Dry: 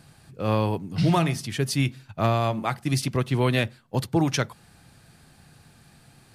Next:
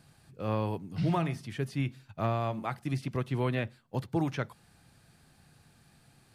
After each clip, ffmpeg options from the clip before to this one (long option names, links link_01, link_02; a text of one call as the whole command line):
ffmpeg -i in.wav -filter_complex "[0:a]acrossover=split=2700[link_01][link_02];[link_02]acompressor=threshold=-44dB:ratio=4:attack=1:release=60[link_03];[link_01][link_03]amix=inputs=2:normalize=0,volume=-7.5dB" out.wav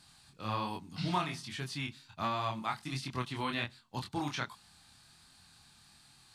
ffmpeg -i in.wav -af "equalizer=frequency=125:width_type=o:width=1:gain=-5,equalizer=frequency=500:width_type=o:width=1:gain=-10,equalizer=frequency=1000:width_type=o:width=1:gain=7,equalizer=frequency=4000:width_type=o:width=1:gain=11,equalizer=frequency=8000:width_type=o:width=1:gain=7,flanger=delay=22.5:depth=5.3:speed=1.3" out.wav